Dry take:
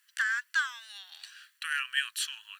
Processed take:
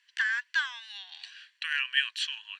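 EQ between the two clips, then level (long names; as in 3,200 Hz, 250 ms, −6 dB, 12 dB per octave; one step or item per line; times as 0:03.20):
Chebyshev high-pass with heavy ripple 700 Hz, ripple 3 dB
high-frequency loss of the air 140 metres
parametric band 1,300 Hz −13 dB 0.34 octaves
+7.5 dB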